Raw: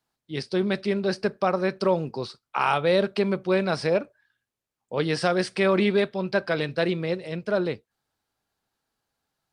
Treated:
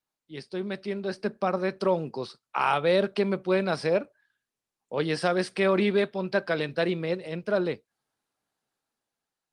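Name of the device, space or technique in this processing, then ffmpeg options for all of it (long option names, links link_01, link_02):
video call: -filter_complex "[0:a]asettb=1/sr,asplit=3[link_01][link_02][link_03];[link_01]atrim=end=1.124[link_04];[link_02]atrim=start=1.12:end=1.58,asetpts=PTS-STARTPTS,afade=type=in:duration=0.004:curve=qsin,afade=type=out:start_time=0.456:duration=0.004:curve=qsin,adynamicequalizer=threshold=0.00794:dfrequency=220:dqfactor=3.8:tfrequency=220:tqfactor=3.8:attack=5:release=100:ratio=0.375:range=3.5:mode=boostabove:tftype=bell[link_05];[link_03]atrim=start=1.576[link_06];[link_04][link_05]acrossfade=duration=0.004:curve1=hsin:curve2=qsin[link_07];[link_07][link_06]acrossfade=duration=0.004:curve1=qsin:curve2=hsin,highpass=140,dynaudnorm=framelen=540:gausssize=5:maxgain=9dB,volume=-8dB" -ar 48000 -c:a libopus -b:a 32k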